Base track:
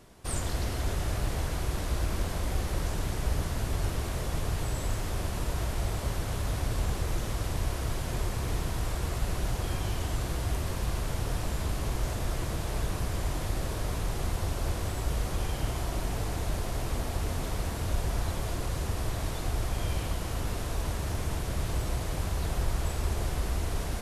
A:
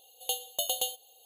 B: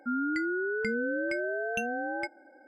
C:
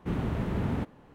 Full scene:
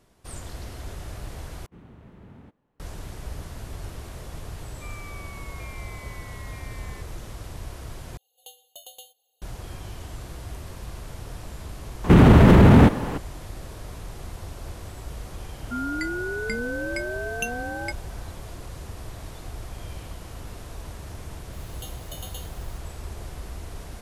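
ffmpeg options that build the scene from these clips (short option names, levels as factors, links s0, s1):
-filter_complex "[3:a]asplit=2[s0][s1];[2:a]asplit=2[s2][s3];[1:a]asplit=2[s4][s5];[0:a]volume=0.473[s6];[s2]lowpass=f=2200:t=q:w=0.5098,lowpass=f=2200:t=q:w=0.6013,lowpass=f=2200:t=q:w=0.9,lowpass=f=2200:t=q:w=2.563,afreqshift=-2600[s7];[s1]alimiter=level_in=29.9:limit=0.891:release=50:level=0:latency=1[s8];[s3]aemphasis=mode=production:type=75kf[s9];[s5]aeval=exprs='val(0)+0.5*0.01*sgn(val(0))':c=same[s10];[s6]asplit=3[s11][s12][s13];[s11]atrim=end=1.664[s14];[s0]atrim=end=1.14,asetpts=PTS-STARTPTS,volume=0.126[s15];[s12]atrim=start=2.796:end=8.174[s16];[s4]atrim=end=1.25,asetpts=PTS-STARTPTS,volume=0.188[s17];[s13]atrim=start=9.416[s18];[s7]atrim=end=2.67,asetpts=PTS-STARTPTS,volume=0.178,afade=t=in:d=0.004:c=hsin,afade=t=out:st=2.666:d=0.004:c=hsin,adelay=4750[s19];[s8]atrim=end=1.14,asetpts=PTS-STARTPTS,volume=0.668,afade=t=in:d=0.004:c=hsin,afade=t=out:st=1.136:d=0.004:c=hsin,adelay=12040[s20];[s9]atrim=end=2.67,asetpts=PTS-STARTPTS,afade=t=in:d=0.004:c=hsin,afade=t=out:st=2.666:d=0.004:c=hsin,adelay=15650[s21];[s10]atrim=end=1.25,asetpts=PTS-STARTPTS,volume=0.266,afade=t=in:d=0.004:c=hsin,afade=t=out:st=1.246:d=0.004:c=hsin,adelay=21530[s22];[s14][s15]acrossfade=d=0.004:c1=hsin:c2=hsin[s23];[s23][s16]acrossfade=d=0.004:c1=hsin:c2=hsin[s24];[s24][s17]acrossfade=d=0.004:c1=hsin:c2=hsin[s25];[s25][s18]acrossfade=d=0.004:c1=hsin:c2=hsin[s26];[s26][s19][s20][s21][s22]amix=inputs=5:normalize=0"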